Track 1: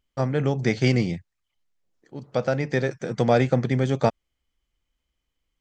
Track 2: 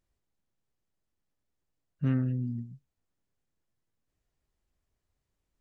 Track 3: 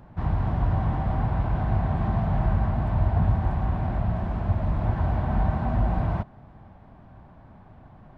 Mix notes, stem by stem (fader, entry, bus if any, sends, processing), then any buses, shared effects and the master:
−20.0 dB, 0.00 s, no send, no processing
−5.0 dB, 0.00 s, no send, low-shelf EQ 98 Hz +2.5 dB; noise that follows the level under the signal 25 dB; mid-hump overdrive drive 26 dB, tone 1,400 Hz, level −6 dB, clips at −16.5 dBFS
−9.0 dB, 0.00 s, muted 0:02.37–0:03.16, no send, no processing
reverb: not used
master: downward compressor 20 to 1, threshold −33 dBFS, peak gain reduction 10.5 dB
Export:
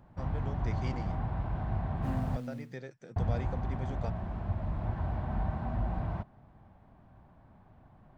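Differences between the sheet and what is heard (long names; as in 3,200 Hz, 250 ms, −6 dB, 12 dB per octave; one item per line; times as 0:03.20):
stem 2 −5.0 dB → −13.5 dB
master: missing downward compressor 20 to 1, threshold −33 dBFS, peak gain reduction 10.5 dB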